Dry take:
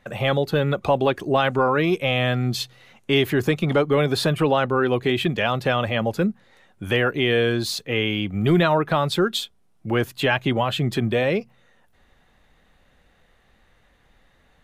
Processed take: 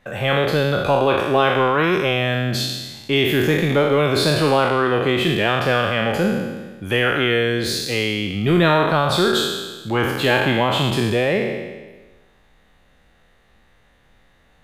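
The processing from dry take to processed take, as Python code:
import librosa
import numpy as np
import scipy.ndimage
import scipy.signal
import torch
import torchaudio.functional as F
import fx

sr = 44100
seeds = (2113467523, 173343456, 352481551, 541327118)

y = fx.spec_trails(x, sr, decay_s=1.3)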